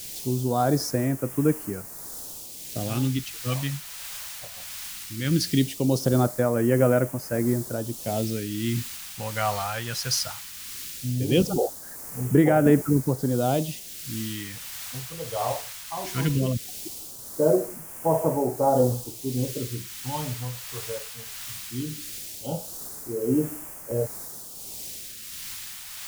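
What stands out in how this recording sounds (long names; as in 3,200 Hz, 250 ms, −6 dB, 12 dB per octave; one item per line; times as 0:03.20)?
a quantiser's noise floor 6 bits, dither triangular
phaser sweep stages 2, 0.18 Hz, lowest notch 300–3,600 Hz
tremolo triangle 1.5 Hz, depth 40%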